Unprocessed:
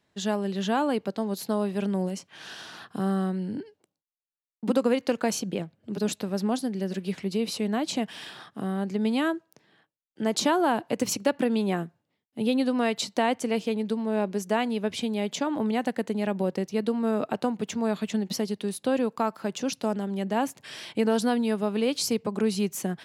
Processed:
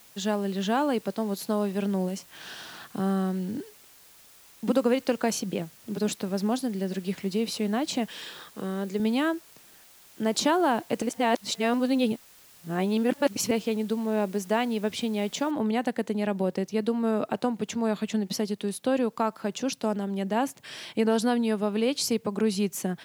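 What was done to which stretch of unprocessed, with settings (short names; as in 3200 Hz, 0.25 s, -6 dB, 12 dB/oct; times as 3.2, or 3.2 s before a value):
8.08–9 speaker cabinet 170–9800 Hz, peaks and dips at 250 Hz -5 dB, 500 Hz +8 dB, 710 Hz -9 dB, 3900 Hz +3 dB, 7000 Hz +6 dB
11.02–13.51 reverse
15.51 noise floor step -54 dB -68 dB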